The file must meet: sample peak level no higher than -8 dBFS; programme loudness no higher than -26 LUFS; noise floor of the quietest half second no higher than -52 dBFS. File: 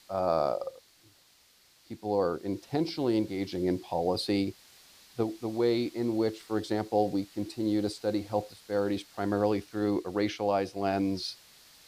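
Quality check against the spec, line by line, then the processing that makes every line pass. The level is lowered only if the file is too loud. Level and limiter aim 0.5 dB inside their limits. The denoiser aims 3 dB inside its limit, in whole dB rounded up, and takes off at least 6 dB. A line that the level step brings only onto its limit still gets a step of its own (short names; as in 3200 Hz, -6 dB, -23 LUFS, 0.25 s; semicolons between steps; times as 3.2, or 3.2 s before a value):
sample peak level -13.5 dBFS: OK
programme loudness -30.5 LUFS: OK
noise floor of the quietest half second -63 dBFS: OK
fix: none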